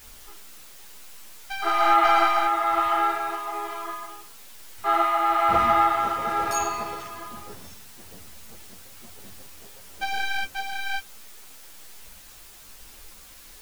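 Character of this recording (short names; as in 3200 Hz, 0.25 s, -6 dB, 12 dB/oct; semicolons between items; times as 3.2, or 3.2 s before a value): tremolo triangle 1.1 Hz, depth 50%; a quantiser's noise floor 8-bit, dither triangular; a shimmering, thickened sound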